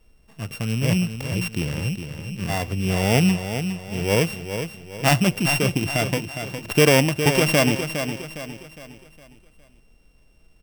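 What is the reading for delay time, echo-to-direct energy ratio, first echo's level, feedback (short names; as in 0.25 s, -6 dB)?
0.41 s, -7.5 dB, -8.5 dB, 41%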